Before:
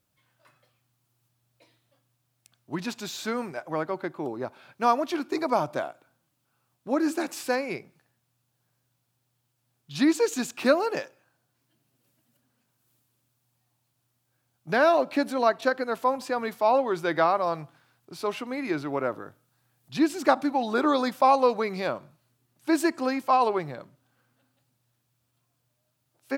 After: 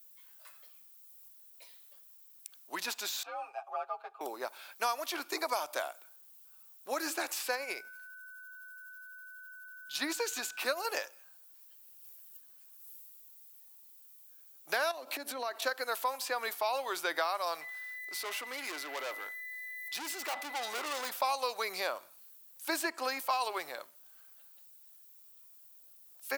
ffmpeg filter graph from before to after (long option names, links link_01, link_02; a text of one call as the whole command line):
ffmpeg -i in.wav -filter_complex "[0:a]asettb=1/sr,asplit=3[link_01][link_02][link_03];[link_01]atrim=end=3.234[link_04];[link_02]atrim=start=3.23:end=4.21,asetpts=PTS-STARTPTS,afade=type=in:duration=0.004:curve=qsin,afade=type=out:start_time=0.976:duration=0.004:curve=qsin,asplit=3[link_05][link_06][link_07];[link_05]bandpass=frequency=730:width_type=q:width=8,volume=0dB[link_08];[link_06]bandpass=frequency=1090:width_type=q:width=8,volume=-6dB[link_09];[link_07]bandpass=frequency=2440:width_type=q:width=8,volume=-9dB[link_10];[link_08][link_09][link_10]amix=inputs=3:normalize=0,afreqshift=69,aecho=1:1:7.4:0.97,atrim=end_sample=43218[link_11];[link_03]atrim=start=4.206[link_12];[link_04][link_11]acrossfade=duration=0.004:curve1=hsin:curve2=qsin[link_13];[link_13][link_12]acrossfade=duration=0.004:curve1=qsin:curve2=hsin,asettb=1/sr,asplit=3[link_14][link_15][link_16];[link_14]atrim=end=7.544[link_17];[link_15]atrim=start=7.54:end=10.85,asetpts=PTS-STARTPTS,afade=type=in:duration=0.004:curve=qsin,afade=type=out:start_time=3.306:duration=0.004:curve=qsin,tremolo=f=12:d=0.45,aeval=exprs='val(0)+0.00355*sin(2*PI*1500*n/s)':channel_layout=same[link_18];[link_16]atrim=start=10.846[link_19];[link_17][link_18]acrossfade=duration=0.004:curve1=hsin:curve2=qsin[link_20];[link_20][link_19]acrossfade=duration=0.004:curve1=qsin:curve2=hsin,asettb=1/sr,asplit=3[link_21][link_22][link_23];[link_21]atrim=end=14.914[link_24];[link_22]atrim=start=14.91:end=15.6,asetpts=PTS-STARTPTS,afade=type=in:duration=0.004:curve=qsin,afade=type=out:start_time=0.686:duration=0.004:curve=qsin,lowshelf=frequency=170:width_type=q:width=3:gain=-14,acompressor=threshold=-28dB:ratio=10:attack=3.2:release=140:knee=1:detection=peak[link_25];[link_23]atrim=start=15.596[link_26];[link_24][link_25]acrossfade=duration=0.004:curve1=hsin:curve2=qsin[link_27];[link_27][link_26]acrossfade=duration=0.004:curve1=qsin:curve2=hsin,asettb=1/sr,asplit=3[link_28][link_29][link_30];[link_28]atrim=end=17.614[link_31];[link_29]atrim=start=17.61:end=21.1,asetpts=PTS-STARTPTS,afade=type=in:duration=0.004:curve=qsin,afade=type=out:start_time=3.486:duration=0.004:curve=qsin,aeval=exprs='val(0)+0.00708*sin(2*PI*2000*n/s)':channel_layout=same,aeval=exprs='(tanh(39.8*val(0)+0.2)-tanh(0.2))/39.8':channel_layout=same[link_32];[link_30]atrim=start=21.096[link_33];[link_31][link_32]acrossfade=duration=0.004:curve1=hsin:curve2=qsin[link_34];[link_34][link_33]acrossfade=duration=0.004:curve1=qsin:curve2=hsin,highpass=510,aemphasis=mode=production:type=riaa,acrossover=split=1800|4200[link_35][link_36][link_37];[link_35]acompressor=threshold=-32dB:ratio=4[link_38];[link_36]acompressor=threshold=-41dB:ratio=4[link_39];[link_37]acompressor=threshold=-42dB:ratio=4[link_40];[link_38][link_39][link_40]amix=inputs=3:normalize=0" out.wav